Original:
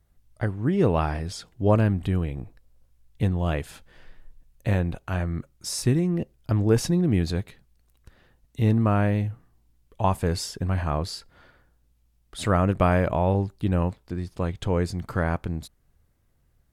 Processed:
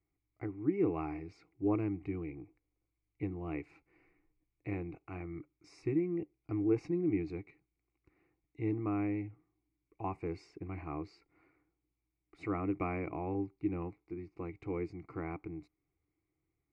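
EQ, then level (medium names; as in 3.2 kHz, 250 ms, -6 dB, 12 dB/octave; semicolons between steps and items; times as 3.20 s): vowel filter u; low-pass 4.7 kHz 12 dB/octave; static phaser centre 900 Hz, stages 6; +8.5 dB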